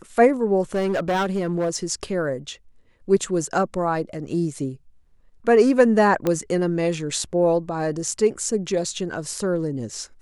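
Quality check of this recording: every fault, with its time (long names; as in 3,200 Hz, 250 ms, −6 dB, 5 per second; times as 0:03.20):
0:00.74–0:01.76: clipping −18.5 dBFS
0:06.27: click −9 dBFS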